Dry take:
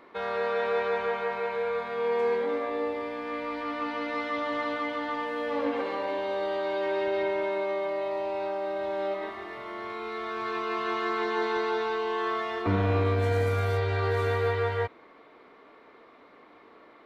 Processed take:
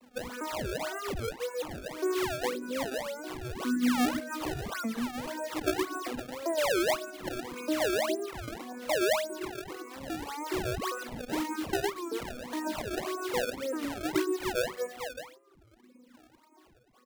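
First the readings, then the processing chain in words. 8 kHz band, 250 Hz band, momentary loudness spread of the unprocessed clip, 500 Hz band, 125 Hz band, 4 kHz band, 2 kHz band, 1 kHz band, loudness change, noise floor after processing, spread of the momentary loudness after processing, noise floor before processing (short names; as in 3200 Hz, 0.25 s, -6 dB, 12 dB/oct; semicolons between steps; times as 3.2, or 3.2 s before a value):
n/a, +3.0 dB, 7 LU, -5.0 dB, -12.5 dB, +3.0 dB, -3.0 dB, -6.0 dB, -3.5 dB, -62 dBFS, 11 LU, -54 dBFS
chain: arpeggiated vocoder major triad, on B3, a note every 0.404 s; on a send: feedback echo 0.117 s, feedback 40%, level -4 dB; on the sum: flange 0.25 Hz, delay 0.3 ms, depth 2.5 ms, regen -7%; high shelf 3300 Hz -7 dB; shoebox room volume 2400 m³, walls furnished, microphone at 2.6 m; dynamic EQ 1100 Hz, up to -4 dB, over -47 dBFS, Q 1.9; gate -47 dBFS, range -9 dB; in parallel at +1.5 dB: compressor, threshold -45 dBFS, peak gain reduction 20.5 dB; on the sum: decimation with a swept rate 25×, swing 160% 1.8 Hz; reverb removal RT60 1.1 s; record warp 33 1/3 rpm, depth 160 cents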